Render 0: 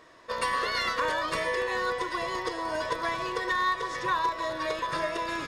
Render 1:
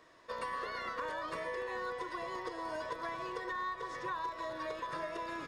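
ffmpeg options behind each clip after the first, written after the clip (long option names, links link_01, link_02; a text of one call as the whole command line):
ffmpeg -i in.wav -filter_complex "[0:a]acrossover=split=150|1800[link_01][link_02][link_03];[link_01]acompressor=threshold=-53dB:ratio=4[link_04];[link_02]acompressor=threshold=-29dB:ratio=4[link_05];[link_03]acompressor=threshold=-46dB:ratio=4[link_06];[link_04][link_05][link_06]amix=inputs=3:normalize=0,volume=-7dB" out.wav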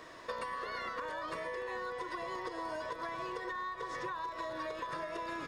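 ffmpeg -i in.wav -af "acompressor=threshold=-47dB:ratio=12,volume=10.5dB" out.wav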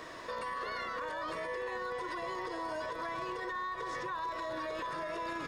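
ffmpeg -i in.wav -af "alimiter=level_in=11.5dB:limit=-24dB:level=0:latency=1:release=26,volume=-11.5dB,volume=5dB" out.wav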